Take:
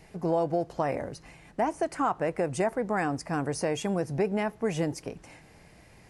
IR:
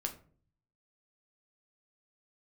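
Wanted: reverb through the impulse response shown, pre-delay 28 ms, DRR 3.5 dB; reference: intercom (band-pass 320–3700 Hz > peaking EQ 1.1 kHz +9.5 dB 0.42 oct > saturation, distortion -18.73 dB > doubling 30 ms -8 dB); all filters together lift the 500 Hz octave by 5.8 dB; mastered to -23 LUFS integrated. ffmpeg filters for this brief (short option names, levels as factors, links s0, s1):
-filter_complex "[0:a]equalizer=f=500:t=o:g=7.5,asplit=2[s0][s1];[1:a]atrim=start_sample=2205,adelay=28[s2];[s1][s2]afir=irnorm=-1:irlink=0,volume=0.631[s3];[s0][s3]amix=inputs=2:normalize=0,highpass=320,lowpass=3700,equalizer=f=1100:t=o:w=0.42:g=9.5,asoftclip=threshold=0.237,asplit=2[s4][s5];[s5]adelay=30,volume=0.398[s6];[s4][s6]amix=inputs=2:normalize=0,volume=1.12"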